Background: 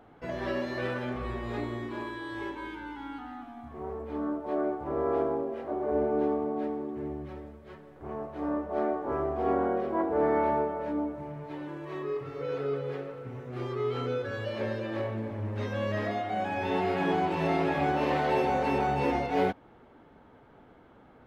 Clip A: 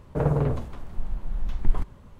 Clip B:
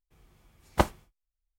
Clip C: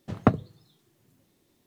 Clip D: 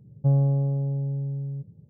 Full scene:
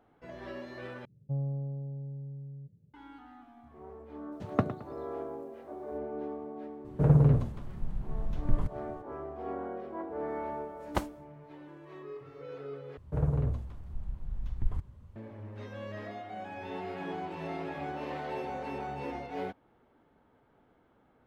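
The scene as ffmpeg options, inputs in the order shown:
-filter_complex "[1:a]asplit=2[a][b];[0:a]volume=-10.5dB[c];[4:a]lowpass=1k[d];[3:a]aecho=1:1:109|218|327|436:0.224|0.0806|0.029|0.0104[e];[a]equalizer=f=140:t=o:w=1.9:g=10.5[f];[b]equalizer=f=79:w=0.74:g=14[g];[c]asplit=3[h][i][j];[h]atrim=end=1.054[k];[d]atrim=end=1.89,asetpts=PTS-STARTPTS,volume=-12.5dB[l];[i]atrim=start=2.936:end=12.974[m];[g]atrim=end=2.19,asetpts=PTS-STARTPTS,volume=-13dB[n];[j]atrim=start=15.156[o];[e]atrim=end=1.66,asetpts=PTS-STARTPTS,volume=-7.5dB,afade=t=in:d=0.004:c=hsin,afade=t=out:st=1.656:d=0.004:c=hsin,adelay=4320[p];[f]atrim=end=2.19,asetpts=PTS-STARTPTS,volume=-7dB,afade=t=in:d=0.02,afade=t=out:st=2.17:d=0.02,adelay=6840[q];[2:a]atrim=end=1.58,asetpts=PTS-STARTPTS,volume=-8dB,afade=t=in:d=0.004:c=hsin,afade=t=out:st=1.576:d=0.004:c=hsin,adelay=10170[r];[k][l]acrossfade=d=0.004:c1=hsin:c2=hsin[s];[s][m]acrossfade=d=0.004:c1=hsin:c2=hsin[t];[t][n]acrossfade=d=0.004:c1=hsin:c2=hsin[u];[u][o]acrossfade=d=0.004:c1=hsin:c2=hsin[v];[v][p][q][r]amix=inputs=4:normalize=0"

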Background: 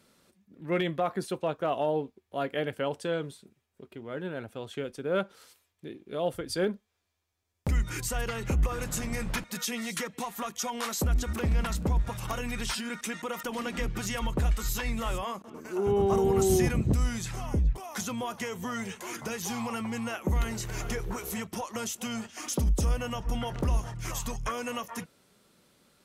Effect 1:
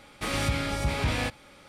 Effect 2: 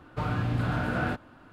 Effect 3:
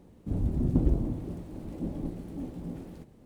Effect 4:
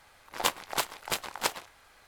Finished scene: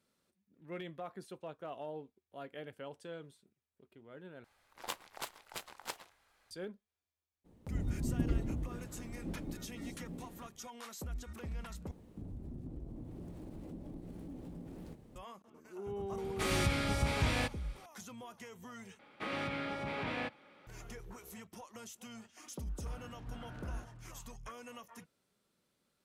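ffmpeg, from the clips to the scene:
-filter_complex "[3:a]asplit=2[a][b];[1:a]asplit=2[c][d];[0:a]volume=-15.5dB[e];[b]acompressor=threshold=-41dB:ratio=6:attack=3.2:release=140:knee=1:detection=peak[f];[d]acrossover=split=150 3500:gain=0.0794 1 0.1[g][h][i];[g][h][i]amix=inputs=3:normalize=0[j];[2:a]acompressor=threshold=-34dB:ratio=6:attack=3.2:release=140:knee=1:detection=peak[k];[e]asplit=4[l][m][n][o];[l]atrim=end=4.444[p];[4:a]atrim=end=2.07,asetpts=PTS-STARTPTS,volume=-13.5dB[q];[m]atrim=start=6.506:end=11.914[r];[f]atrim=end=3.25,asetpts=PTS-STARTPTS,volume=-2dB[s];[n]atrim=start=15.156:end=18.994[t];[j]atrim=end=1.68,asetpts=PTS-STARTPTS,volume=-7dB[u];[o]atrim=start=20.666[v];[a]atrim=end=3.25,asetpts=PTS-STARTPTS,volume=-8dB,afade=t=in:d=0.02,afade=t=out:st=3.23:d=0.02,adelay=7440[w];[c]atrim=end=1.68,asetpts=PTS-STARTPTS,volume=-4.5dB,afade=t=in:d=0.004:c=hsin,afade=t=out:st=1.676:d=0.004:c=hsin,adelay=16180[x];[k]atrim=end=1.52,asetpts=PTS-STARTPTS,volume=-13dB,afade=t=in:d=0.004:c=hsin,afade=t=out:st=1.516:d=0.004:c=hsin,adelay=22690[y];[p][q]acrossfade=d=0.004:c1=hsin:c2=hsin[z];[z][r]acrossfade=d=0.004:c1=hsin:c2=hsin[aa];[aa][s]acrossfade=d=0.004:c1=hsin:c2=hsin[ab];[ab][t]acrossfade=d=0.004:c1=hsin:c2=hsin[ac];[ac][u]acrossfade=d=0.004:c1=hsin:c2=hsin[ad];[ad][v]acrossfade=d=0.004:c1=hsin:c2=hsin[ae];[ae][w][x][y]amix=inputs=4:normalize=0"

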